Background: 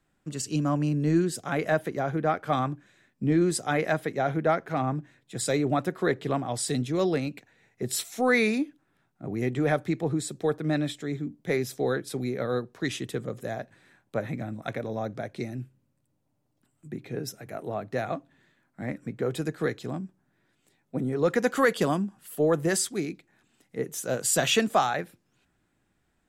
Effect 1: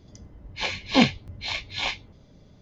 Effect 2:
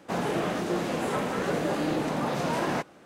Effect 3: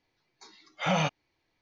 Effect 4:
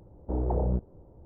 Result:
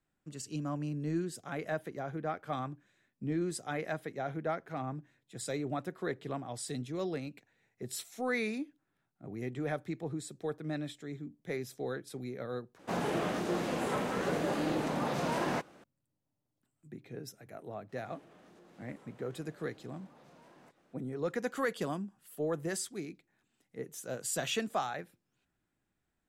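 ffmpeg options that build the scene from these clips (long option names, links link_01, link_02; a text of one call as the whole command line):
ffmpeg -i bed.wav -i cue0.wav -i cue1.wav -filter_complex "[2:a]asplit=2[link_01][link_02];[0:a]volume=-10.5dB[link_03];[link_02]acompressor=threshold=-41dB:ratio=6:attack=3.2:release=140:knee=1:detection=peak[link_04];[link_03]asplit=2[link_05][link_06];[link_05]atrim=end=12.794[link_07];[link_01]atrim=end=3.05,asetpts=PTS-STARTPTS,volume=-4.5dB[link_08];[link_06]atrim=start=15.836[link_09];[link_04]atrim=end=3.05,asetpts=PTS-STARTPTS,volume=-16dB,afade=type=in:duration=0.004:curve=hsin,afade=type=out:start_time=3.046:duration=0.004:curve=hsin,adelay=17890[link_10];[link_07][link_08]acrossfade=duration=0.004:curve1=hsin:curve2=hsin[link_11];[link_11][link_09]acrossfade=duration=0.004:curve1=hsin:curve2=hsin[link_12];[link_12][link_10]amix=inputs=2:normalize=0" out.wav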